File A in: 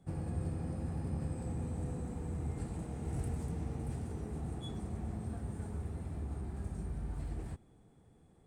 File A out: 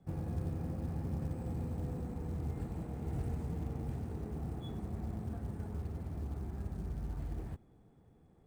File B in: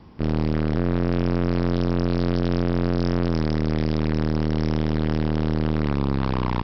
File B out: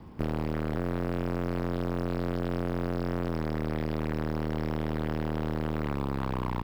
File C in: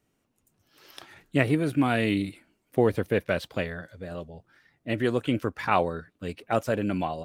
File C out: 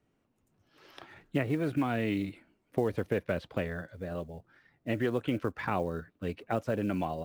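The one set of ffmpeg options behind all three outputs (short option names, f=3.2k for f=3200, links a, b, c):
-filter_complex "[0:a]aemphasis=mode=reproduction:type=75kf,acrossover=split=470|3600[a][b][c];[a]acompressor=threshold=-29dB:ratio=4[d];[b]acompressor=threshold=-33dB:ratio=4[e];[c]acompressor=threshold=-56dB:ratio=4[f];[d][e][f]amix=inputs=3:normalize=0,acrusher=bits=8:mode=log:mix=0:aa=0.000001"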